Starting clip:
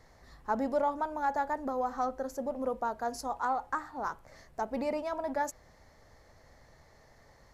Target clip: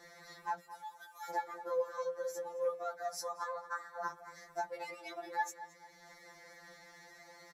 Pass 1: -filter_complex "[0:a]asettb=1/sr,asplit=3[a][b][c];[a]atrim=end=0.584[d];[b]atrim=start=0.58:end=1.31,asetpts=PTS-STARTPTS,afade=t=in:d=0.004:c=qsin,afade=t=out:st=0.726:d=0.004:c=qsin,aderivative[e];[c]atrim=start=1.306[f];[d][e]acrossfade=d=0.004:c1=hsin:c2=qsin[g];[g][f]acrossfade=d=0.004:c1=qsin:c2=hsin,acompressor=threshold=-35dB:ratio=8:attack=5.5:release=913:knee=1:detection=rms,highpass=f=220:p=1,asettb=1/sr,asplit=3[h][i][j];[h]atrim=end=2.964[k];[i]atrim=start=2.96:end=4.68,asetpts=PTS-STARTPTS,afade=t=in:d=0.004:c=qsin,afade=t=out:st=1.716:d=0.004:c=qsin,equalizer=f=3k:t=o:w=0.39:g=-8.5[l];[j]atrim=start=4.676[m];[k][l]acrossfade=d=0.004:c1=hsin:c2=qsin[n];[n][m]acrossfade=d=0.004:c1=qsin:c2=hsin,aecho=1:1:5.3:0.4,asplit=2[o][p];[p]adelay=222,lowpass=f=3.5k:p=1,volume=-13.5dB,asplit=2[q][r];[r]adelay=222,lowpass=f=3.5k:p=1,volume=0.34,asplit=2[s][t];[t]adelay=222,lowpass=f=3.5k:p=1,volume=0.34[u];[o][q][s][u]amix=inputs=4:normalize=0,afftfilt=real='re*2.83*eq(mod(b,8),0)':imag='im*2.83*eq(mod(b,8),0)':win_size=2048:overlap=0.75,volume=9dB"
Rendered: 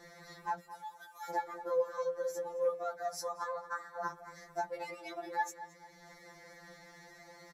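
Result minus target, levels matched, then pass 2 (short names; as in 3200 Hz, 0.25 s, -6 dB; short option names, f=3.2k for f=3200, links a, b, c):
250 Hz band +2.5 dB
-filter_complex "[0:a]asettb=1/sr,asplit=3[a][b][c];[a]atrim=end=0.584[d];[b]atrim=start=0.58:end=1.31,asetpts=PTS-STARTPTS,afade=t=in:d=0.004:c=qsin,afade=t=out:st=0.726:d=0.004:c=qsin,aderivative[e];[c]atrim=start=1.306[f];[d][e]acrossfade=d=0.004:c1=hsin:c2=qsin[g];[g][f]acrossfade=d=0.004:c1=qsin:c2=hsin,acompressor=threshold=-35dB:ratio=8:attack=5.5:release=913:knee=1:detection=rms,highpass=f=590:p=1,asettb=1/sr,asplit=3[h][i][j];[h]atrim=end=2.964[k];[i]atrim=start=2.96:end=4.68,asetpts=PTS-STARTPTS,afade=t=in:d=0.004:c=qsin,afade=t=out:st=1.716:d=0.004:c=qsin,equalizer=f=3k:t=o:w=0.39:g=-8.5[l];[j]atrim=start=4.676[m];[k][l]acrossfade=d=0.004:c1=hsin:c2=qsin[n];[n][m]acrossfade=d=0.004:c1=qsin:c2=hsin,aecho=1:1:5.3:0.4,asplit=2[o][p];[p]adelay=222,lowpass=f=3.5k:p=1,volume=-13.5dB,asplit=2[q][r];[r]adelay=222,lowpass=f=3.5k:p=1,volume=0.34,asplit=2[s][t];[t]adelay=222,lowpass=f=3.5k:p=1,volume=0.34[u];[o][q][s][u]amix=inputs=4:normalize=0,afftfilt=real='re*2.83*eq(mod(b,8),0)':imag='im*2.83*eq(mod(b,8),0)':win_size=2048:overlap=0.75,volume=9dB"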